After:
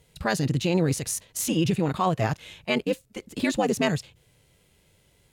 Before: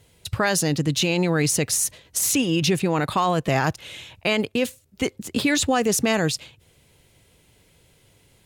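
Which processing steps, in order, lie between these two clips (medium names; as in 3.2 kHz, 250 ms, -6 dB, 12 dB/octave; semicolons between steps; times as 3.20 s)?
harmonic-percussive split percussive -11 dB; granular stretch 0.63×, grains 20 ms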